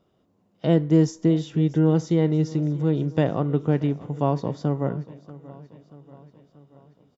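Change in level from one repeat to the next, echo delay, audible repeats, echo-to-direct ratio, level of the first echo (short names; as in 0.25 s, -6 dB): -5.0 dB, 0.634 s, 4, -18.0 dB, -19.5 dB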